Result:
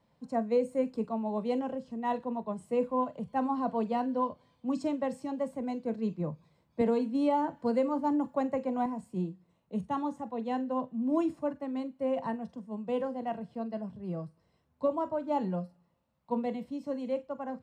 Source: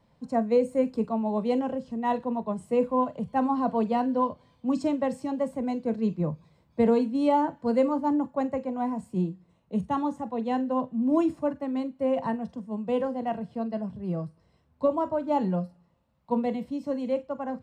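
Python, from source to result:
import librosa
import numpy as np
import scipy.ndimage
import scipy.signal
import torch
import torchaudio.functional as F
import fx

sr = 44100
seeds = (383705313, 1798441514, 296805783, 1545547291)

y = fx.low_shelf(x, sr, hz=96.0, db=-7.5)
y = fx.band_squash(y, sr, depth_pct=70, at=(6.81, 8.86))
y = F.gain(torch.from_numpy(y), -4.5).numpy()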